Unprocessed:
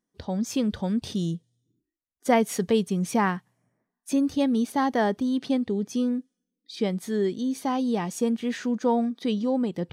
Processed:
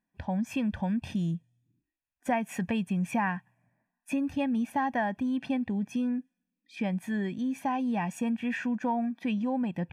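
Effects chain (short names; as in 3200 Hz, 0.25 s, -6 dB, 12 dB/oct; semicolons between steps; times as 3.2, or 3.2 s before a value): resonant high shelf 3200 Hz -8 dB, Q 3; comb 1.2 ms, depth 76%; compressor 3:1, threshold -24 dBFS, peak gain reduction 8.5 dB; gain -2.5 dB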